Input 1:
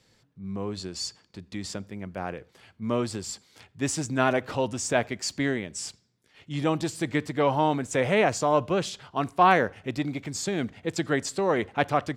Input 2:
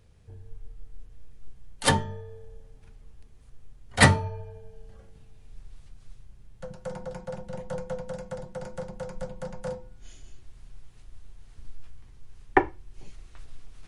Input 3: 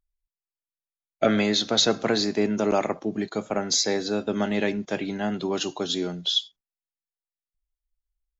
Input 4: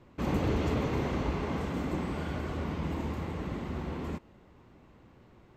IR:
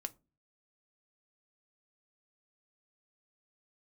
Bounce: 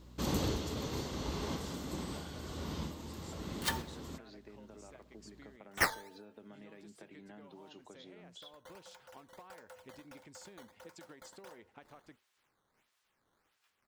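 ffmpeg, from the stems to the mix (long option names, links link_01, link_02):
-filter_complex "[0:a]equalizer=frequency=130:width=1.6:gain=-7,acompressor=threshold=-27dB:ratio=6,volume=-17.5dB,asplit=2[link_01][link_02];[1:a]highpass=1000,acrusher=samples=10:mix=1:aa=0.000001:lfo=1:lforange=16:lforate=1.5,adelay=1800,volume=-10dB[link_03];[2:a]lowpass=3400,acompressor=threshold=-26dB:ratio=6,adelay=2100,volume=-13.5dB[link_04];[3:a]aeval=exprs='val(0)+0.00316*(sin(2*PI*60*n/s)+sin(2*PI*2*60*n/s)/2+sin(2*PI*3*60*n/s)/3+sin(2*PI*4*60*n/s)/4+sin(2*PI*5*60*n/s)/5)':channel_layout=same,bass=frequency=250:gain=-1,treble=frequency=4000:gain=-8,aexciter=amount=5.8:drive=8.7:freq=3500,volume=-3.5dB[link_05];[link_02]apad=whole_len=245350[link_06];[link_05][link_06]sidechaincompress=threshold=-52dB:ratio=6:attack=20:release=965[link_07];[link_01][link_04]amix=inputs=2:normalize=0,acompressor=threshold=-51dB:ratio=6,volume=0dB[link_08];[link_03][link_07][link_08]amix=inputs=3:normalize=0,equalizer=frequency=710:width=6.7:gain=-2.5"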